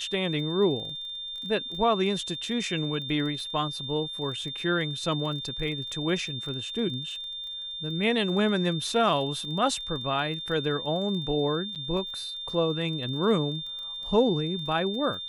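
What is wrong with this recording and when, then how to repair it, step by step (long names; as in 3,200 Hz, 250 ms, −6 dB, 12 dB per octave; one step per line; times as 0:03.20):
surface crackle 23 per second −37 dBFS
whistle 3,600 Hz −34 dBFS
0:11.75–0:11.76: drop-out 7.9 ms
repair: click removal
notch filter 3,600 Hz, Q 30
repair the gap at 0:11.75, 7.9 ms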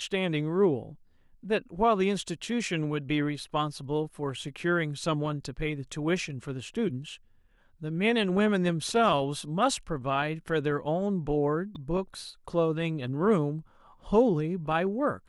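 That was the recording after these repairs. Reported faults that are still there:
none of them is left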